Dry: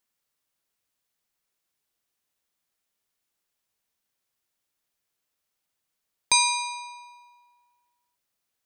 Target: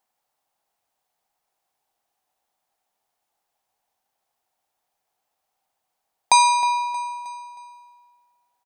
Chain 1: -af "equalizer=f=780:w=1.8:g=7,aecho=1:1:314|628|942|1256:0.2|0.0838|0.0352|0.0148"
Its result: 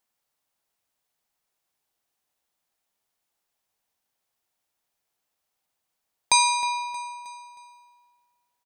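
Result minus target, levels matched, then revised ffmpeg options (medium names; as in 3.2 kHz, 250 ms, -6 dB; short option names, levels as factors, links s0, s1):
1 kHz band -3.5 dB
-af "equalizer=f=780:w=1.8:g=18.5,aecho=1:1:314|628|942|1256:0.2|0.0838|0.0352|0.0148"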